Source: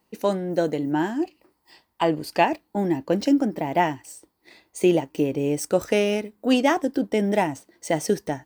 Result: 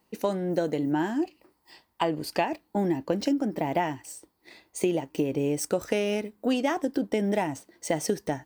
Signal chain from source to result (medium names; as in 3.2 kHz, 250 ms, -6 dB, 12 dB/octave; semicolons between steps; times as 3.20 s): compression 6:1, threshold -22 dBFS, peak gain reduction 9 dB